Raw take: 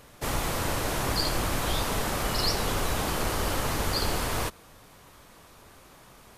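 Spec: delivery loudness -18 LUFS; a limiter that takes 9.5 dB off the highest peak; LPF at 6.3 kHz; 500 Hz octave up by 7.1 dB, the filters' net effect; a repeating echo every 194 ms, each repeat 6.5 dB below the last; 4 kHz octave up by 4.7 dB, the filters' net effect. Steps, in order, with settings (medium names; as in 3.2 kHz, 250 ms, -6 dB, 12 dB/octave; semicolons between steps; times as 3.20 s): low-pass 6.3 kHz; peaking EQ 500 Hz +8.5 dB; peaking EQ 4 kHz +6.5 dB; peak limiter -18.5 dBFS; feedback delay 194 ms, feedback 47%, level -6.5 dB; trim +9 dB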